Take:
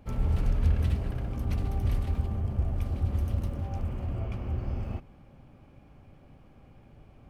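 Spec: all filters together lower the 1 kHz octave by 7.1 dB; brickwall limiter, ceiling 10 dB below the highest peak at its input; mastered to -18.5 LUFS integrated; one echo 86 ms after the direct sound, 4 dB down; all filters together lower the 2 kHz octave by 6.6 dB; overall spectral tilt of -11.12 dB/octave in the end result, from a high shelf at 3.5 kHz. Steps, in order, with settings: peaking EQ 1 kHz -9 dB; peaking EQ 2 kHz -4.5 dB; treble shelf 3.5 kHz -4 dB; peak limiter -25 dBFS; delay 86 ms -4 dB; trim +14.5 dB

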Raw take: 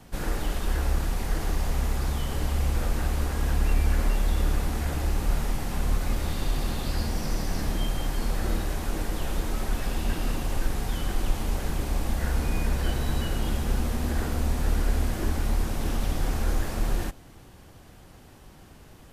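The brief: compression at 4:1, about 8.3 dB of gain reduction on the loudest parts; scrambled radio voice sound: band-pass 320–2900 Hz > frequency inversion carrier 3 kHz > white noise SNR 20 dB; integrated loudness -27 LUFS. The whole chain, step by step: compression 4:1, threshold -28 dBFS; band-pass 320–2900 Hz; frequency inversion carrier 3 kHz; white noise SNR 20 dB; trim +13.5 dB

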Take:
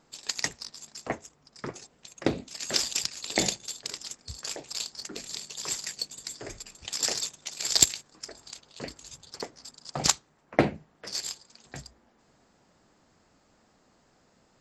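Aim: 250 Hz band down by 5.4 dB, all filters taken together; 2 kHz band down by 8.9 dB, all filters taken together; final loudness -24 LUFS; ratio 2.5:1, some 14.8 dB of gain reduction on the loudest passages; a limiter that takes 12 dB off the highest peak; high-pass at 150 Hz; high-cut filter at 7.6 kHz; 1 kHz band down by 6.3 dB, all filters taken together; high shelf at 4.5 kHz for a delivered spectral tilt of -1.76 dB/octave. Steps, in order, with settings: high-pass 150 Hz; low-pass 7.6 kHz; peaking EQ 250 Hz -6 dB; peaking EQ 1 kHz -7 dB; peaking EQ 2 kHz -7.5 dB; treble shelf 4.5 kHz -6.5 dB; compression 2.5:1, threshold -46 dBFS; trim +25.5 dB; peak limiter -8.5 dBFS

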